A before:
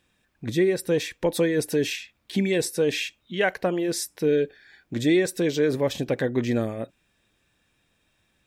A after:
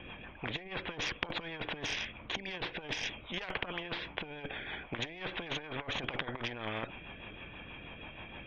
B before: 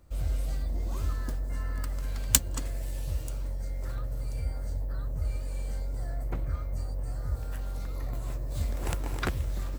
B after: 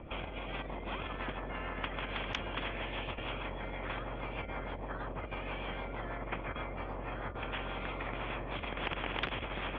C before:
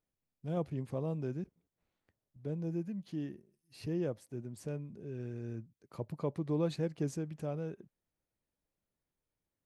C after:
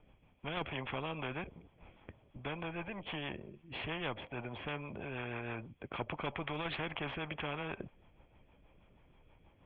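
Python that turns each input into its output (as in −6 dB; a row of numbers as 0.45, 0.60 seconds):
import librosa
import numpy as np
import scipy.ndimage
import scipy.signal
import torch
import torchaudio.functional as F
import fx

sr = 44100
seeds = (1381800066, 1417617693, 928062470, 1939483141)

y = scipy.signal.sosfilt(scipy.signal.cheby1(6, 9, 3400.0, 'lowpass', fs=sr, output='sos'), x)
y = fx.rotary(y, sr, hz=6.3)
y = fx.cheby_harmonics(y, sr, harmonics=(2, 4), levels_db=(-13, -34), full_scale_db=-16.5)
y = fx.low_shelf(y, sr, hz=75.0, db=3.5)
y = fx.over_compress(y, sr, threshold_db=-39.0, ratio=-0.5)
y = fx.low_shelf(y, sr, hz=160.0, db=6.5)
y = fx.spectral_comp(y, sr, ratio=4.0)
y = y * 10.0 ** (6.5 / 20.0)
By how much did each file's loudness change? −14.0, −6.0, −2.0 LU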